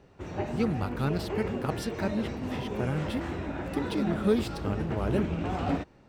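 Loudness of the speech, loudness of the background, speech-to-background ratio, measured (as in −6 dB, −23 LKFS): −32.5 LKFS, −34.0 LKFS, 1.5 dB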